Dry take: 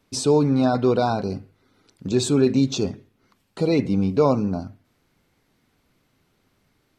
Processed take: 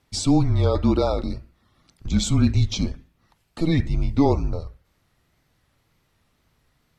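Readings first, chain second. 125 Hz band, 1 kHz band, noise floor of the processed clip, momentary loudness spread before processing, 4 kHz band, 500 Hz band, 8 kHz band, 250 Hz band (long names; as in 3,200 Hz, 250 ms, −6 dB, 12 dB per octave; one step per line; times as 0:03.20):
+4.0 dB, −4.0 dB, −68 dBFS, 13 LU, +0.5 dB, −6.0 dB, −0.5 dB, −1.5 dB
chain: frequency shifter −160 Hz
tape wow and flutter 78 cents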